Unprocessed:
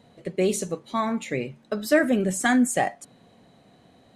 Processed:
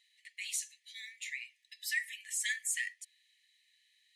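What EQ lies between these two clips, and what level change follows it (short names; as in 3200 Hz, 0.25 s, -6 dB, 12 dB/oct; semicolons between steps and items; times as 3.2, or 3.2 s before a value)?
brick-wall FIR high-pass 1700 Hz; -4.5 dB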